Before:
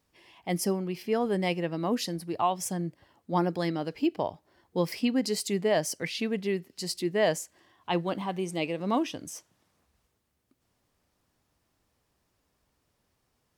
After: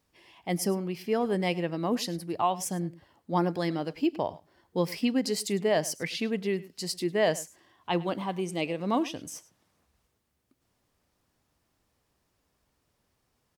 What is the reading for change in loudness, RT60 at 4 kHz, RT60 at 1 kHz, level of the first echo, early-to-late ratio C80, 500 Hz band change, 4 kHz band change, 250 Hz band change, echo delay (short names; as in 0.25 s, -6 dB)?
0.0 dB, none, none, -19.0 dB, none, 0.0 dB, 0.0 dB, 0.0 dB, 0.103 s